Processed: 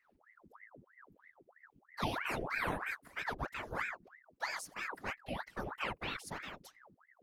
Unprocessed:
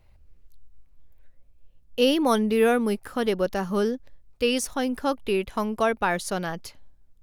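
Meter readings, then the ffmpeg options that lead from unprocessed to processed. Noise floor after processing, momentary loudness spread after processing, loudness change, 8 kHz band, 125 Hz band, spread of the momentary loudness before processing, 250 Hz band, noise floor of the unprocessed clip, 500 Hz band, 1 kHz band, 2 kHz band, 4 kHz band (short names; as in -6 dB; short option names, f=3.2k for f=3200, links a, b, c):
-74 dBFS, 17 LU, -15.0 dB, -16.0 dB, -10.5 dB, 9 LU, -22.0 dB, -57 dBFS, -22.0 dB, -12.0 dB, -6.5 dB, -15.0 dB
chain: -af "afftfilt=real='hypot(re,im)*cos(2*PI*random(0))':imag='hypot(re,im)*sin(2*PI*random(1))':win_size=512:overlap=0.75,flanger=delay=0.1:depth=2.4:regen=-64:speed=1.6:shape=triangular,aeval=exprs='val(0)*sin(2*PI*1100*n/s+1100*0.85/3.1*sin(2*PI*3.1*n/s))':c=same,volume=-3dB"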